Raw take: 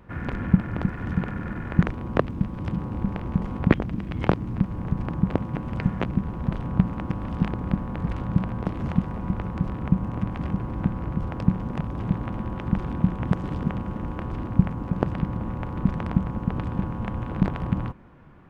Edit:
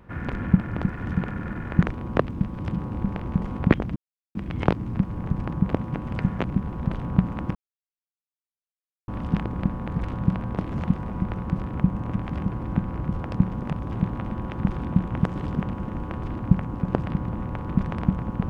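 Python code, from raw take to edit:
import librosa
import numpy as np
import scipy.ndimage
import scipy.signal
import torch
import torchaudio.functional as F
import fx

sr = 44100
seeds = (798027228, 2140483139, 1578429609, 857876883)

y = fx.edit(x, sr, fx.insert_silence(at_s=3.96, length_s=0.39),
    fx.insert_silence(at_s=7.16, length_s=1.53), tone=tone)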